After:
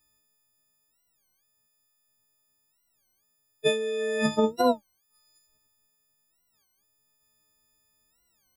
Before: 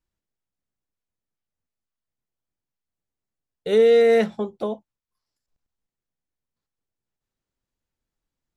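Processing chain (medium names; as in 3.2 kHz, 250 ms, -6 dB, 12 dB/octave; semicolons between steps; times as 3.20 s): partials quantised in pitch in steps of 6 st; compressor with a negative ratio -25 dBFS, ratio -1; warped record 33 1/3 rpm, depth 250 cents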